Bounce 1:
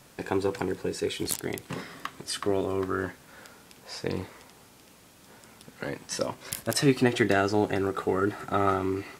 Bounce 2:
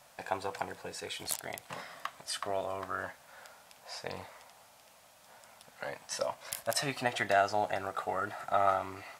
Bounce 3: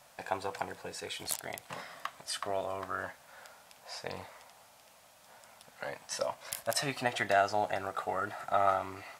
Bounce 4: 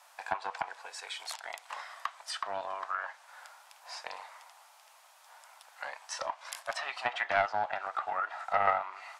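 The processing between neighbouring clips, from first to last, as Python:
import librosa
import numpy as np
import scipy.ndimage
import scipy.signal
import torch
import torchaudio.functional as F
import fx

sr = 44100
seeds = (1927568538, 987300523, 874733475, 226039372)

y1 = fx.low_shelf_res(x, sr, hz=490.0, db=-9.0, q=3.0)
y1 = y1 * 10.0 ** (-4.5 / 20.0)
y2 = y1
y3 = fx.ladder_highpass(y2, sr, hz=730.0, resonance_pct=35)
y3 = fx.env_lowpass_down(y3, sr, base_hz=3000.0, full_db=-36.5)
y3 = fx.doppler_dist(y3, sr, depth_ms=0.13)
y3 = y3 * 10.0 ** (7.5 / 20.0)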